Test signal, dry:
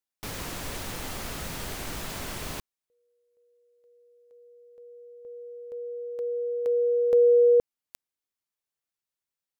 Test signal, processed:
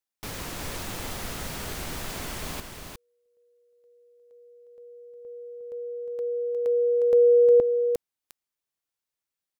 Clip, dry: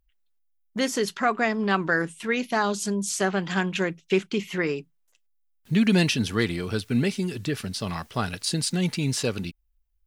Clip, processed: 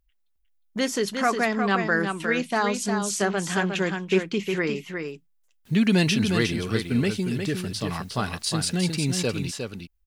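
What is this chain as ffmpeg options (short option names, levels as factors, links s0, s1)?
-af "aecho=1:1:358:0.501"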